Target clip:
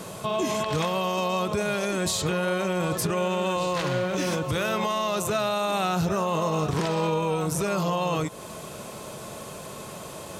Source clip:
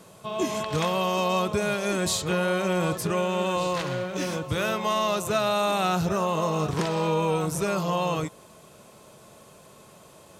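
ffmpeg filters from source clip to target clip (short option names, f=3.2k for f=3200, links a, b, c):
-filter_complex "[0:a]asplit=2[a][b];[b]acompressor=threshold=-38dB:ratio=6,volume=1dB[c];[a][c]amix=inputs=2:normalize=0,alimiter=limit=-23dB:level=0:latency=1:release=112,volume=5.5dB"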